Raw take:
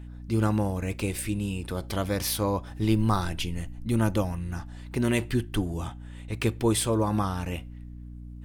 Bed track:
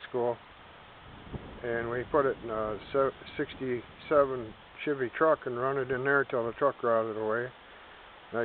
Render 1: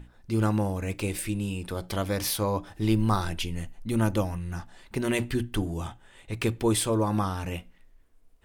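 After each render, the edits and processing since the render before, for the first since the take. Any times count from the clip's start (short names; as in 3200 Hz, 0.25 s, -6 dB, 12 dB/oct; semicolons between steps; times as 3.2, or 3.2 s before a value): notches 60/120/180/240/300 Hz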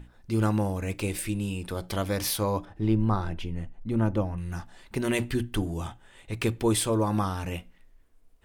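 2.65–4.38 LPF 1100 Hz 6 dB/oct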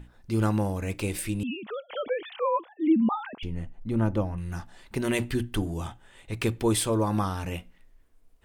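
1.43–3.43 sine-wave speech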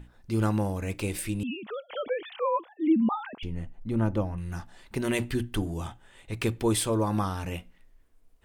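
gain -1 dB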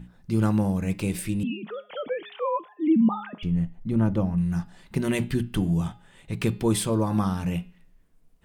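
bell 170 Hz +15 dB 0.56 oct; de-hum 207 Hz, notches 24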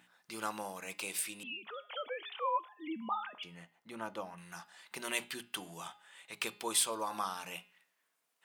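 HPF 1000 Hz 12 dB/oct; dynamic EQ 1800 Hz, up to -5 dB, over -52 dBFS, Q 2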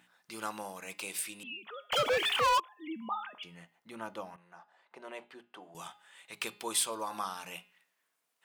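1.92–2.6 sample leveller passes 5; 4.36–5.75 band-pass 620 Hz, Q 1.2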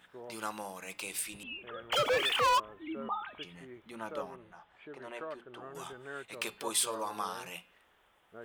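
add bed track -17.5 dB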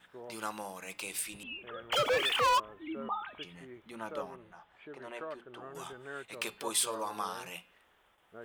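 gate with hold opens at -58 dBFS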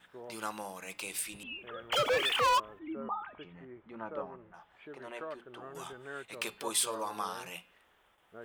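2.79–4.54 LPF 1700 Hz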